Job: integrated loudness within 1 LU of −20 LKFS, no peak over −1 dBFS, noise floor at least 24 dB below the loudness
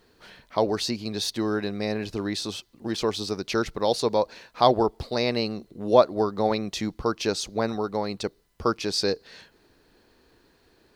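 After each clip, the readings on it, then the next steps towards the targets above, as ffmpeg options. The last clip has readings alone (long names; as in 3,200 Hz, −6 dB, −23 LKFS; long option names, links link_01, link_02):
integrated loudness −26.5 LKFS; sample peak −3.5 dBFS; target loudness −20.0 LKFS
→ -af "volume=6.5dB,alimiter=limit=-1dB:level=0:latency=1"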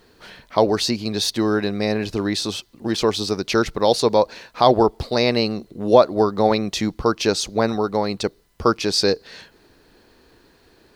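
integrated loudness −20.5 LKFS; sample peak −1.0 dBFS; background noise floor −56 dBFS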